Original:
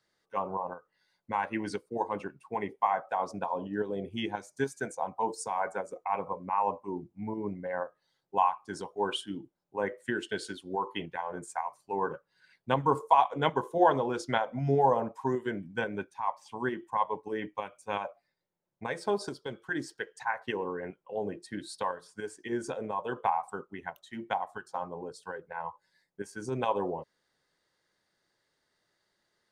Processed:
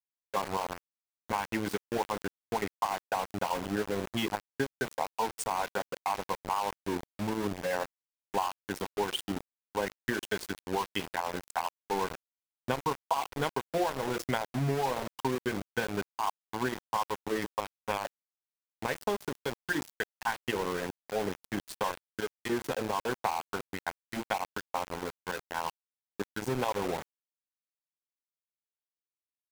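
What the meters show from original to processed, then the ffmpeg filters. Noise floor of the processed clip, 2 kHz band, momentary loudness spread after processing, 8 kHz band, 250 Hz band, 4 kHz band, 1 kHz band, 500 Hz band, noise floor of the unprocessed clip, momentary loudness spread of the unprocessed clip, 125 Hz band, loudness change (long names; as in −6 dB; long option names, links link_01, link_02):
below −85 dBFS, +1.5 dB, 7 LU, +5.5 dB, +0.5 dB, +3.5 dB, −3.0 dB, −1.5 dB, −79 dBFS, 13 LU, 0.0 dB, −1.0 dB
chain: -af "acompressor=threshold=-31dB:ratio=12,aeval=exprs='val(0)*gte(abs(val(0)),0.0141)':channel_layout=same,volume=5dB"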